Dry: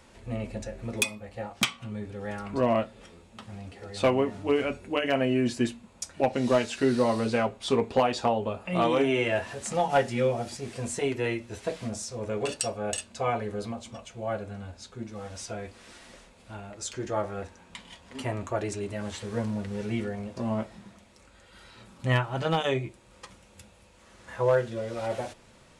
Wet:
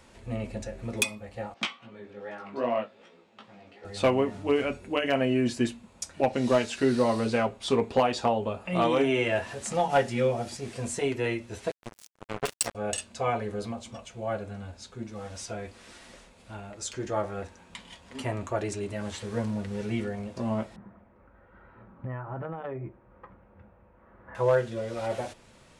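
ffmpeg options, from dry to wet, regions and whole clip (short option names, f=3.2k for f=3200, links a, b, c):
-filter_complex "[0:a]asettb=1/sr,asplit=3[a][b][c];[a]atrim=end=1.544[d];[b]atrim=start=1.54:end=3.85,asetpts=PTS-STARTPTS,afade=t=in:d=0.004:c=qsin,afade=t=out:st=2.306:d=0.004:c=qsin,highpass=260,lowpass=4.1k,flanger=delay=16:depth=4:speed=2.5[e];[c]atrim=start=3.846[f];[d][e]acrossfade=d=0.004:c1=hsin:c2=qsin[g];[g][f]acrossfade=d=0.004:c1=qsin:c2=hsin,asettb=1/sr,asplit=3[h][i][j];[h]atrim=end=11.714[k];[i]atrim=start=11.71:end=12.75,asetpts=PTS-STARTPTS,afade=t=in:d=0.004:c=qsin,afade=t=out:st=1.036:d=0.004:c=qsin,equalizer=f=7.7k:t=o:w=0.93:g=3,acrusher=bits=3:mix=0:aa=0.5[l];[j]atrim=start=12.746[m];[k][l]acrossfade=d=0.004:c1=hsin:c2=qsin[n];[n][m]acrossfade=d=0.004:c1=qsin:c2=hsin,asettb=1/sr,asplit=3[o][p][q];[o]atrim=end=20.764[r];[p]atrim=start=20.76:end=24.35,asetpts=PTS-STARTPTS,afade=t=in:d=0.004:c=qsin,afade=t=out:st=3.586:d=0.004:c=qsin,lowpass=f=1.6k:w=0.5412,lowpass=f=1.6k:w=1.3066,acompressor=threshold=-31dB:ratio=16:attack=3.2:release=140:knee=1:detection=peak[s];[q]atrim=start=24.346[t];[r][s]acrossfade=d=0.004:c1=hsin:c2=qsin[u];[u][t]acrossfade=d=0.004:c1=qsin:c2=hsin"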